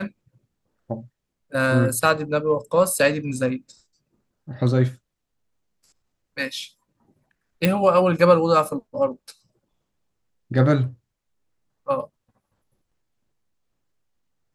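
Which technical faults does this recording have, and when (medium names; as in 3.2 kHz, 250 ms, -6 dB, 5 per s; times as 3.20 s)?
7.65 s: pop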